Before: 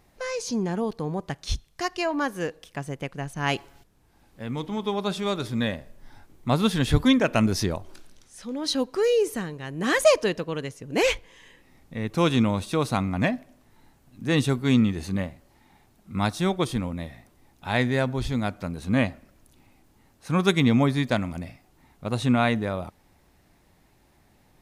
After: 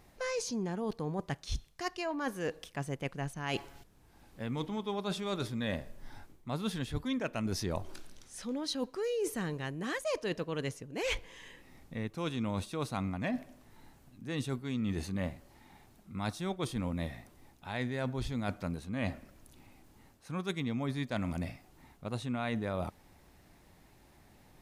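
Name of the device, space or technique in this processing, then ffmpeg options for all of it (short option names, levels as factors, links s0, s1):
compression on the reversed sound: -af "areverse,acompressor=threshold=0.0282:ratio=12,areverse"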